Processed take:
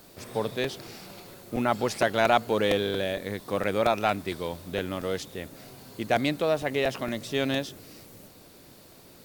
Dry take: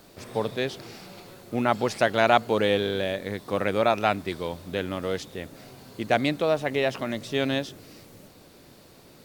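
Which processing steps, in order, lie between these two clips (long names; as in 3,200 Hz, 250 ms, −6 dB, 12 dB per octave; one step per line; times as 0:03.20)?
high-shelf EQ 8,500 Hz +7.5 dB
in parallel at −6.5 dB: soft clipping −16.5 dBFS, distortion −12 dB
on the sum: regular buffer underruns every 0.23 s, samples 128, repeat, from 0:00.64
level −4.5 dB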